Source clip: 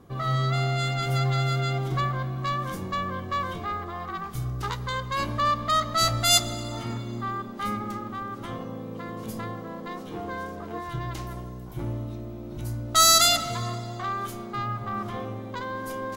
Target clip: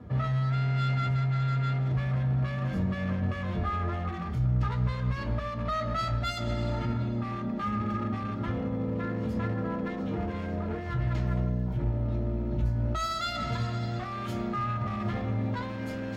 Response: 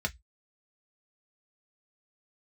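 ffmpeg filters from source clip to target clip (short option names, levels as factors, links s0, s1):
-filter_complex "[0:a]asetnsamples=n=441:p=0,asendcmd='13.52 lowpass f 3600',lowpass=f=1500:p=1,acompressor=threshold=0.0355:ratio=6,alimiter=level_in=1.68:limit=0.0631:level=0:latency=1:release=47,volume=0.596,asoftclip=type=hard:threshold=0.0237[s0];[1:a]atrim=start_sample=2205,asetrate=41895,aresample=44100[s1];[s0][s1]afir=irnorm=-1:irlink=0"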